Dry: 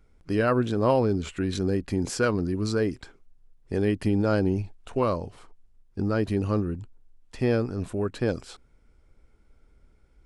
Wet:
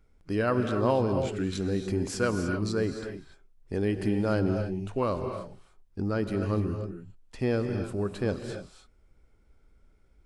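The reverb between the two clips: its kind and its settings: non-linear reverb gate 0.32 s rising, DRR 6 dB; gain -3.5 dB

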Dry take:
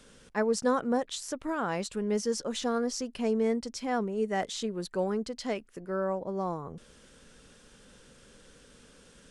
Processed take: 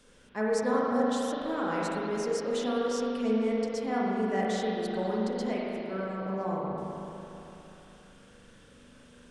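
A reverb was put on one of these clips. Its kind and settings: spring tank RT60 3.2 s, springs 37/41 ms, chirp 65 ms, DRR -5 dB; gain -5 dB

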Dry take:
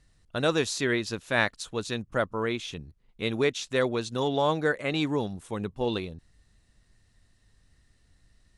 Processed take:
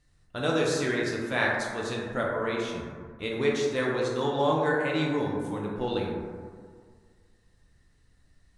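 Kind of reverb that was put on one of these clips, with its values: plate-style reverb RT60 1.9 s, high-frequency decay 0.3×, DRR -3.5 dB; gain -5 dB

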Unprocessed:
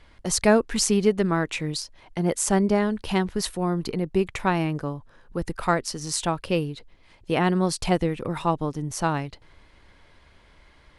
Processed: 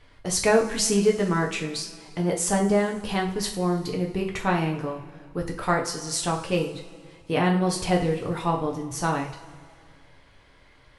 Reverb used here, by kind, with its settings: two-slope reverb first 0.39 s, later 2.1 s, from -18 dB, DRR -0.5 dB; gain -3 dB

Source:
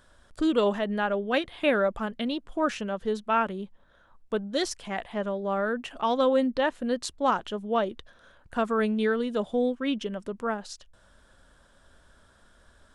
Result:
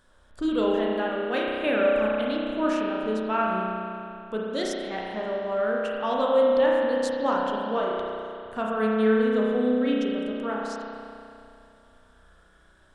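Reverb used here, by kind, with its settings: spring tank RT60 2.6 s, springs 32 ms, chirp 55 ms, DRR -3.5 dB; gain -4 dB

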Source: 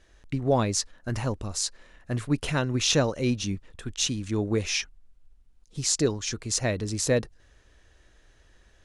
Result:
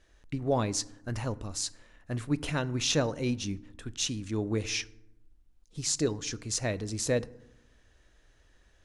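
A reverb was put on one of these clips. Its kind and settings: FDN reverb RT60 0.86 s, low-frequency decay 1.4×, high-frequency decay 0.5×, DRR 16.5 dB; gain -4.5 dB

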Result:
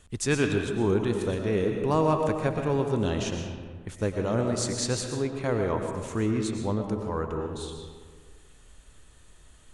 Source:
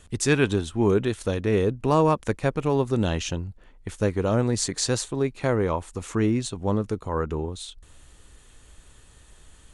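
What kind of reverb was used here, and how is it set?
digital reverb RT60 1.6 s, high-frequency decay 0.55×, pre-delay 75 ms, DRR 3.5 dB; gain -4.5 dB

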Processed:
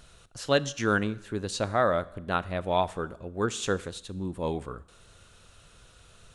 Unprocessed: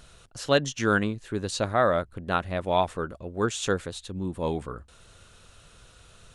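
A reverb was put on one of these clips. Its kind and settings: Schroeder reverb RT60 0.87 s, combs from 30 ms, DRR 18.5 dB; gain -2 dB

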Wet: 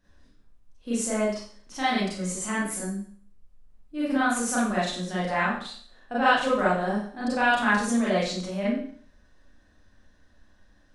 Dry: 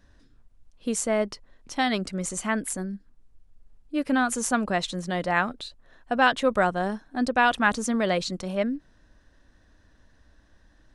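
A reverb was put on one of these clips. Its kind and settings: Schroeder reverb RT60 0.52 s, combs from 30 ms, DRR -9 dB; gain -10 dB

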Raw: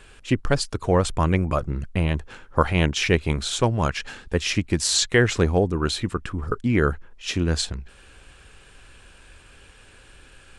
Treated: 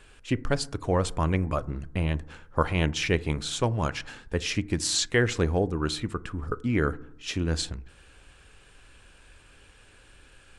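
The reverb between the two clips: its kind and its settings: FDN reverb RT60 0.71 s, low-frequency decay 1.25×, high-frequency decay 0.3×, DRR 16.5 dB; gain -5 dB

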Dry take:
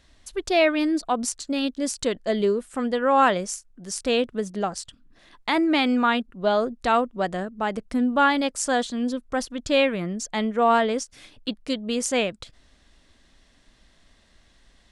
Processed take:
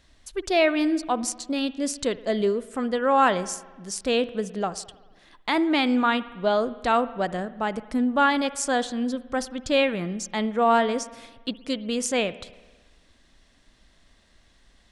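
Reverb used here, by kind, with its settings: spring tank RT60 1.3 s, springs 56 ms, chirp 60 ms, DRR 16 dB; gain -1 dB

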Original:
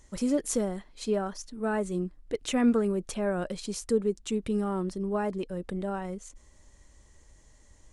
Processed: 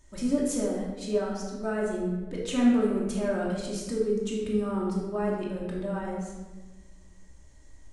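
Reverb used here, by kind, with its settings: shoebox room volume 890 m³, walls mixed, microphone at 2.7 m; gain -5.5 dB

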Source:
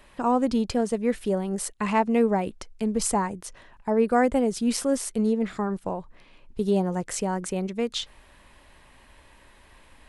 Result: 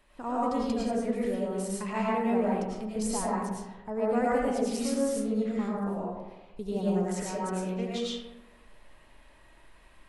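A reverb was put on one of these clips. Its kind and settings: digital reverb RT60 1.1 s, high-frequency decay 0.45×, pre-delay 65 ms, DRR -6.5 dB; gain -11.5 dB

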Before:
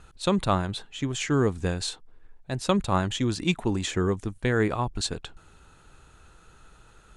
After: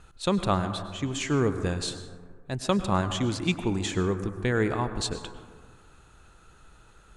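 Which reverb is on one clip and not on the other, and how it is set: plate-style reverb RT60 1.7 s, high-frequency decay 0.3×, pre-delay 90 ms, DRR 9.5 dB; gain -1.5 dB

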